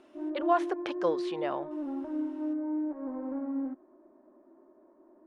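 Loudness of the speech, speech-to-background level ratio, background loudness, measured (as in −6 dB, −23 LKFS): −32.5 LKFS, 2.5 dB, −35.0 LKFS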